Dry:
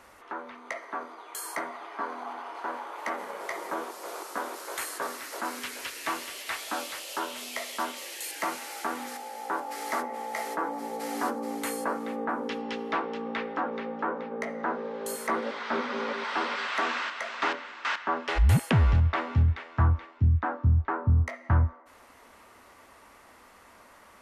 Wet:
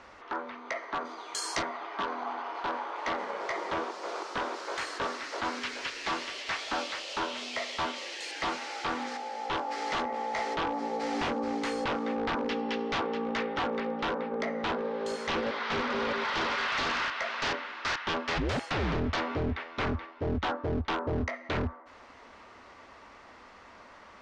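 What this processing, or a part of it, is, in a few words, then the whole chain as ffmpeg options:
synthesiser wavefolder: -filter_complex "[0:a]aeval=exprs='0.0447*(abs(mod(val(0)/0.0447+3,4)-2)-1)':c=same,lowpass=f=5700:w=0.5412,lowpass=f=5700:w=1.3066,asplit=3[s0][s1][s2];[s0]afade=t=out:st=1.04:d=0.02[s3];[s1]bass=f=250:g=7,treble=f=4000:g=14,afade=t=in:st=1.04:d=0.02,afade=t=out:st=1.61:d=0.02[s4];[s2]afade=t=in:st=1.61:d=0.02[s5];[s3][s4][s5]amix=inputs=3:normalize=0,volume=1.33"

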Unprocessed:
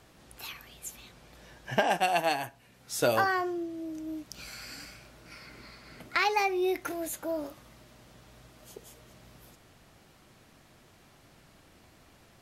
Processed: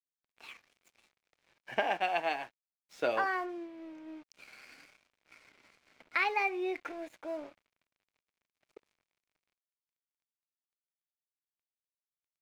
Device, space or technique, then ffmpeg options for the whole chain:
pocket radio on a weak battery: -af "highpass=300,lowpass=3200,aeval=exprs='sgn(val(0))*max(abs(val(0))-0.00266,0)':c=same,equalizer=f=2300:t=o:w=0.35:g=6.5,volume=0.596"

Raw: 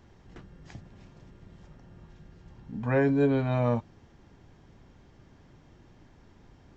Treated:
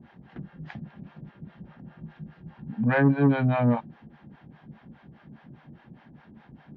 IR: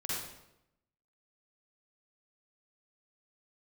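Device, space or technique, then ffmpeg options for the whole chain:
guitar amplifier with harmonic tremolo: -filter_complex "[0:a]acrossover=split=530[s0][s1];[s0]aeval=exprs='val(0)*(1-1/2+1/2*cos(2*PI*4.9*n/s))':c=same[s2];[s1]aeval=exprs='val(0)*(1-1/2-1/2*cos(2*PI*4.9*n/s))':c=same[s3];[s2][s3]amix=inputs=2:normalize=0,asoftclip=type=tanh:threshold=0.0631,highpass=81,equalizer=f=95:t=q:w=4:g=-10,equalizer=f=150:t=q:w=4:g=9,equalizer=f=220:t=q:w=4:g=10,equalizer=f=420:t=q:w=4:g=-4,equalizer=f=790:t=q:w=4:g=4,equalizer=f=1600:t=q:w=4:g=5,lowpass=f=3500:w=0.5412,lowpass=f=3500:w=1.3066,volume=2.51"

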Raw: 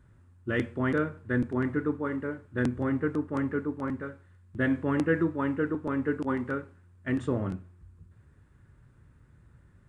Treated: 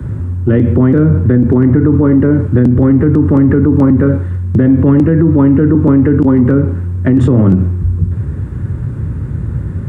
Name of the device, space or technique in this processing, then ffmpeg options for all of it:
mastering chain: -filter_complex "[0:a]highpass=f=59:w=0.5412,highpass=f=59:w=1.3066,equalizer=f=670:t=o:w=0.24:g=-3.5,acrossover=split=120|260|1000[s0][s1][s2][s3];[s0]acompressor=threshold=0.00501:ratio=4[s4];[s1]acompressor=threshold=0.0112:ratio=4[s5];[s2]acompressor=threshold=0.01:ratio=4[s6];[s3]acompressor=threshold=0.00398:ratio=4[s7];[s4][s5][s6][s7]amix=inputs=4:normalize=0,acompressor=threshold=0.0178:ratio=2,asoftclip=type=tanh:threshold=0.0501,tiltshelf=f=750:g=9,alimiter=level_in=42.2:limit=0.891:release=50:level=0:latency=1,volume=0.891"

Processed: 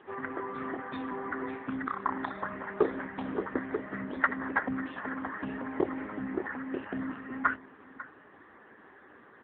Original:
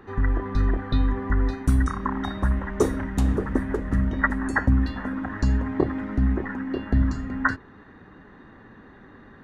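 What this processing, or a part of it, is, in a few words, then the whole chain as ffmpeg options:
satellite phone: -filter_complex "[0:a]asplit=3[s0][s1][s2];[s0]afade=t=out:st=3.67:d=0.02[s3];[s1]highshelf=f=7200:g=4,afade=t=in:st=3.67:d=0.02,afade=t=out:st=4.73:d=0.02[s4];[s2]afade=t=in:st=4.73:d=0.02[s5];[s3][s4][s5]amix=inputs=3:normalize=0,highpass=400,lowpass=3300,aecho=1:1:546:0.133" -ar 8000 -c:a libopencore_amrnb -b:a 6700

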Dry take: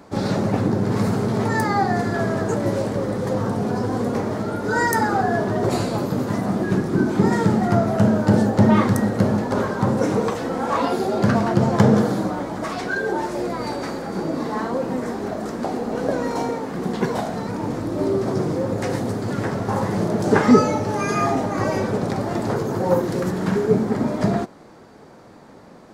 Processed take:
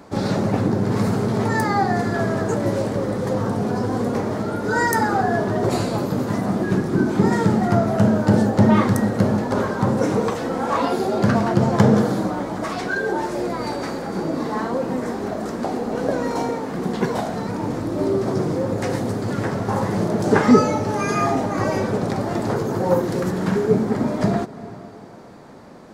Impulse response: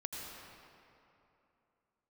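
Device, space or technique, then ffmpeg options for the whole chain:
ducked reverb: -filter_complex "[0:a]asplit=3[s0][s1][s2];[1:a]atrim=start_sample=2205[s3];[s1][s3]afir=irnorm=-1:irlink=0[s4];[s2]apad=whole_len=1143525[s5];[s4][s5]sidechaincompress=threshold=0.0316:ratio=8:attack=16:release=249,volume=0.316[s6];[s0][s6]amix=inputs=2:normalize=0"

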